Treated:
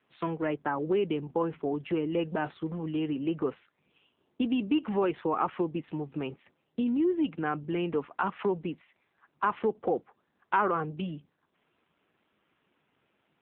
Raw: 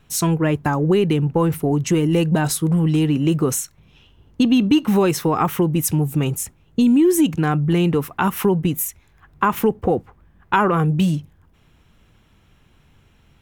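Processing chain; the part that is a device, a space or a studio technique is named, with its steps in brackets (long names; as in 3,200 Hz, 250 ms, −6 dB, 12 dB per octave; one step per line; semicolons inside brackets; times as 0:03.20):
telephone (band-pass filter 310–3,100 Hz; level −7.5 dB; AMR narrowband 7.4 kbit/s 8,000 Hz)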